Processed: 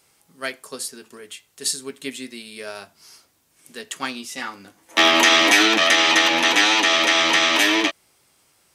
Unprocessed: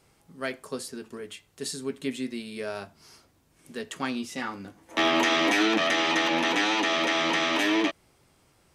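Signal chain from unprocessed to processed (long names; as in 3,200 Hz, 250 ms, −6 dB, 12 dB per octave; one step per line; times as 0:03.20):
spectral tilt +2.5 dB per octave
expander for the loud parts 1.5 to 1, over −35 dBFS
level +8 dB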